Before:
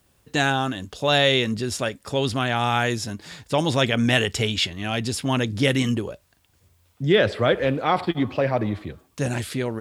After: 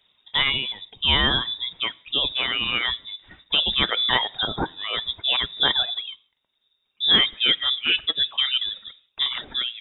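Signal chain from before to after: gated-style reverb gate 200 ms falling, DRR 10.5 dB; reverb removal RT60 1.7 s; frequency inversion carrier 3.7 kHz

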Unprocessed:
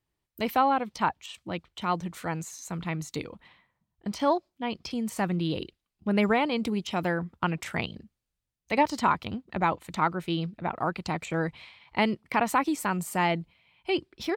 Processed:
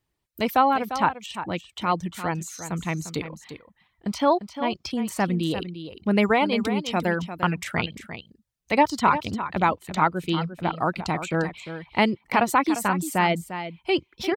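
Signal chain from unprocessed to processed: reverb removal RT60 0.52 s; delay 349 ms -11 dB; trim +4.5 dB

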